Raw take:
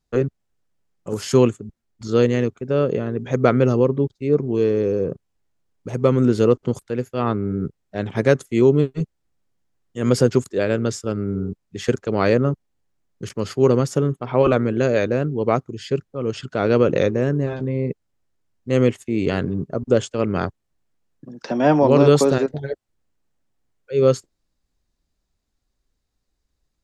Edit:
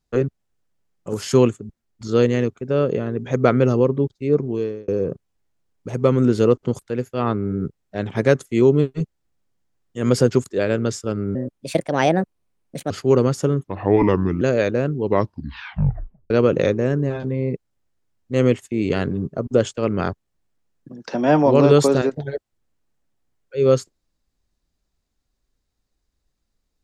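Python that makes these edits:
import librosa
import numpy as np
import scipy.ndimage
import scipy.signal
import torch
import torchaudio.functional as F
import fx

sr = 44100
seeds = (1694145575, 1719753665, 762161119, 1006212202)

y = fx.edit(x, sr, fx.fade_out_span(start_s=4.41, length_s=0.47),
    fx.speed_span(start_s=11.35, length_s=2.08, speed=1.34),
    fx.speed_span(start_s=14.17, length_s=0.61, speed=0.79),
    fx.tape_stop(start_s=15.37, length_s=1.3), tone=tone)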